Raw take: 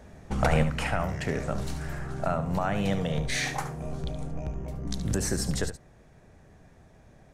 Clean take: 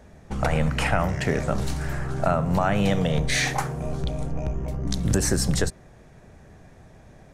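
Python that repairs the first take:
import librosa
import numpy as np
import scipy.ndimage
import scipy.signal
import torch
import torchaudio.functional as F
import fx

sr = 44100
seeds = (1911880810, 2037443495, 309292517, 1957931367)

y = fx.fix_declip(x, sr, threshold_db=-12.0)
y = fx.fix_echo_inverse(y, sr, delay_ms=72, level_db=-11.5)
y = fx.gain(y, sr, db=fx.steps((0.0, 0.0), (0.63, 6.0)))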